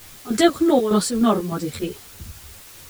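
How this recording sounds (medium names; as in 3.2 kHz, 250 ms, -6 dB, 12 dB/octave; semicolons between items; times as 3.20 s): chopped level 3.3 Hz, depth 65%, duty 60%; a quantiser's noise floor 8-bit, dither triangular; a shimmering, thickened sound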